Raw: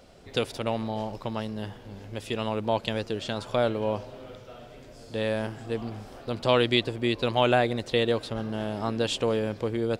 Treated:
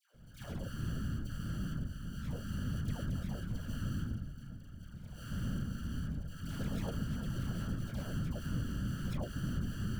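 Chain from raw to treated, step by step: tracing distortion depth 0.062 ms; Chebyshev band-stop 180–6200 Hz, order 4; passive tone stack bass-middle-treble 10-0-1; notches 60/120/180/240 Hz; transient shaper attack -4 dB, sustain +7 dB; sample-rate reducer 1500 Hz, jitter 0%; one-sided clip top -49 dBFS; small resonant body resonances 550/3300 Hz, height 15 dB, ringing for 90 ms; dispersion lows, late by 0.143 s, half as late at 1000 Hz; whisperiser; gain +14.5 dB

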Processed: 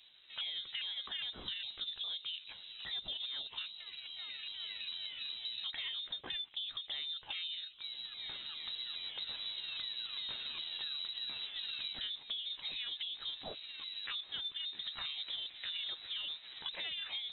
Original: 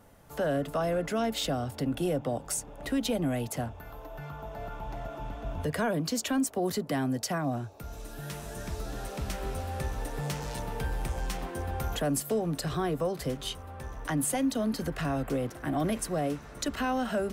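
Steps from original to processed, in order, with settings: repeated pitch sweeps +8.5 st, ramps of 0.407 s; inverted band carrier 3900 Hz; compressor 5:1, threshold -34 dBFS, peak gain reduction 9 dB; gain -4.5 dB

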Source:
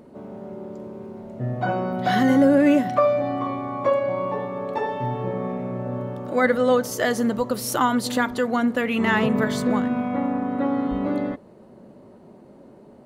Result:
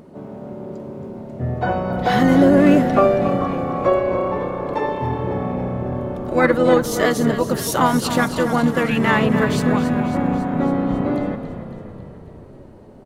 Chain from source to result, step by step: frequency-shifting echo 0.275 s, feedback 62%, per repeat -32 Hz, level -10.5 dB; harmoniser -7 st -6 dB, +3 st -15 dB; gain +2.5 dB

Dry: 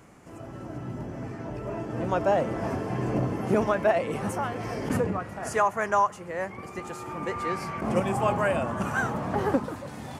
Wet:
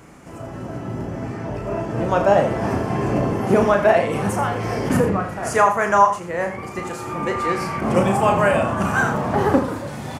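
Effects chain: doubler 35 ms -6.5 dB; echo 83 ms -10.5 dB; gain +7 dB

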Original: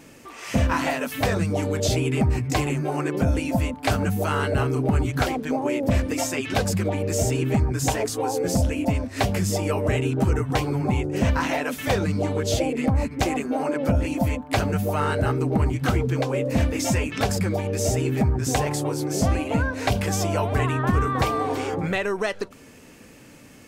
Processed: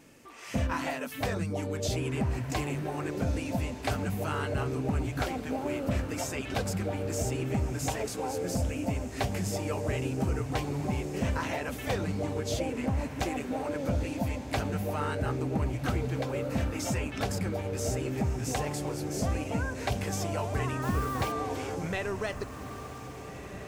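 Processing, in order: 20.82–21.32 requantised 6-bit, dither none; diffused feedback echo 1.632 s, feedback 53%, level -11 dB; gain -8.5 dB

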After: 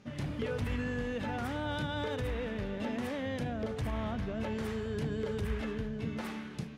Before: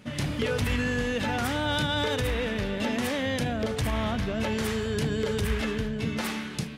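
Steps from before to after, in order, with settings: high shelf 2400 Hz -10.5 dB; buzz 400 Hz, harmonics 17, -63 dBFS -3 dB/oct; gain -6.5 dB

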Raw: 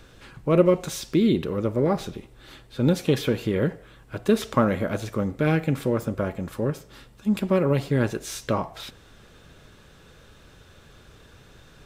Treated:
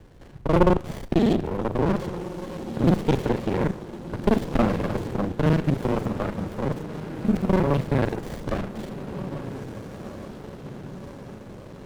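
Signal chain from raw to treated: local time reversal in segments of 35 ms; diffused feedback echo 1.593 s, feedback 54%, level -11.5 dB; running maximum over 33 samples; gain +2 dB

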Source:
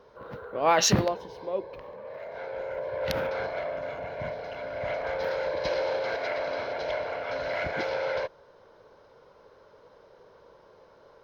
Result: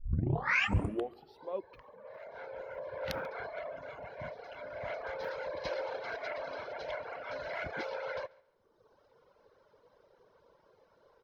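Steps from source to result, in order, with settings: tape start at the beginning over 1.49 s; dynamic EQ 1200 Hz, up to +4 dB, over -47 dBFS, Q 1.1; on a send: feedback echo 0.139 s, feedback 26%, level -15.5 dB; on the sum: reverb removal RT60 1.1 s; gain -7.5 dB

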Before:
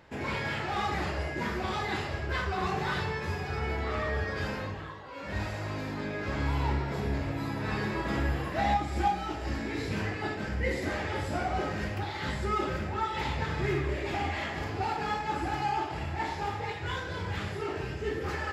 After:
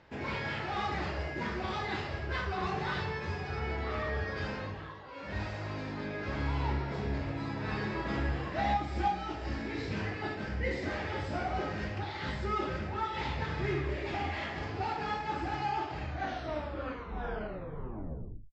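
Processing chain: tape stop at the end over 2.64 s; LPF 6100 Hz 24 dB/oct; gain -3 dB

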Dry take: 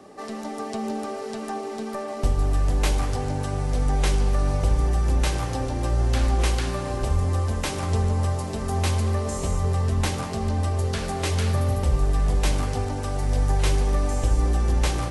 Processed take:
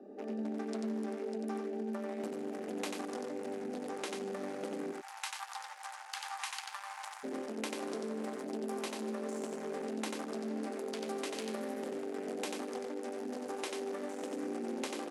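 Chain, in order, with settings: Wiener smoothing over 41 samples; Chebyshev high-pass 210 Hz, order 5, from 4.91 s 820 Hz, from 7.23 s 230 Hz; compressor, threshold -36 dBFS, peak gain reduction 10.5 dB; echo 91 ms -4 dB; gain -1 dB

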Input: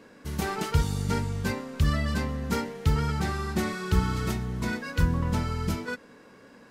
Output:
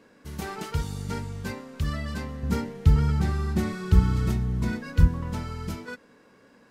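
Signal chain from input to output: 2.43–5.08 low shelf 250 Hz +12 dB; gain -4.5 dB

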